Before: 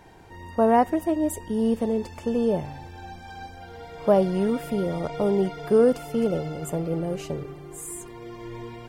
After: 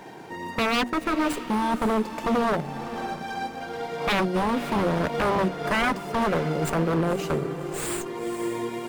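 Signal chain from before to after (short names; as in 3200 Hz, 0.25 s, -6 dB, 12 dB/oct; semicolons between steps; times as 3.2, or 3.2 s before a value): HPF 160 Hz 24 dB/oct; low shelf 230 Hz +4 dB; notches 60/120/180/240/300 Hz; transient shaper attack +1 dB, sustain -5 dB; in parallel at +2 dB: compressor, threshold -28 dBFS, peak gain reduction 15 dB; on the sum: wavefolder -19 dBFS; on a send: diffused feedback echo 0.54 s, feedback 40%, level -12 dB; on the sum: running maximum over 3 samples; gain +1.5 dB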